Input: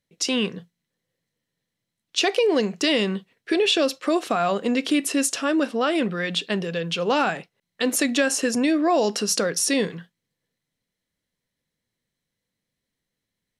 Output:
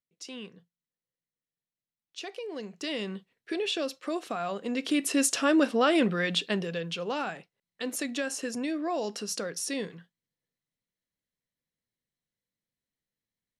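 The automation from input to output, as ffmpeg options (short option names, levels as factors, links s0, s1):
-af "volume=0.891,afade=t=in:st=2.5:d=0.65:silence=0.398107,afade=t=in:st=4.64:d=0.79:silence=0.334965,afade=t=out:st=6.08:d=1.05:silence=0.316228"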